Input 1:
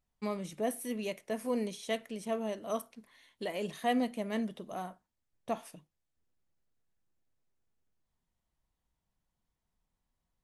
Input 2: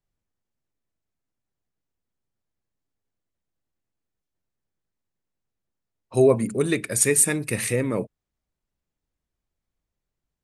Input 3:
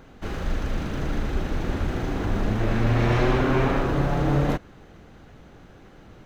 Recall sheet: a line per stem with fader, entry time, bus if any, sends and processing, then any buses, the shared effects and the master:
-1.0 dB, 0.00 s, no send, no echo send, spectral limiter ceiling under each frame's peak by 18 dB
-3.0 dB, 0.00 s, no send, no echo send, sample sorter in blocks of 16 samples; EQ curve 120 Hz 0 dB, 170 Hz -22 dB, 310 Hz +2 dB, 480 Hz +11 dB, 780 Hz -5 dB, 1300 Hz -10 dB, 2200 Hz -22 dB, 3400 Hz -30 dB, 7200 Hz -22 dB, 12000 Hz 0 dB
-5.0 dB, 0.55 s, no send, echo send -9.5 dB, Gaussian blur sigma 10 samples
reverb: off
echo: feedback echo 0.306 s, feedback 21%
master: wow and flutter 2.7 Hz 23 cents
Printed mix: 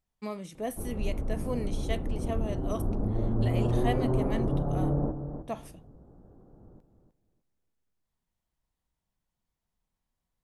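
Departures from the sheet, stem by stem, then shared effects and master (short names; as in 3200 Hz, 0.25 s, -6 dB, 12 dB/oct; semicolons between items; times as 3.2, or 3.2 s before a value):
stem 1: missing spectral limiter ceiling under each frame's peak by 18 dB; stem 2: muted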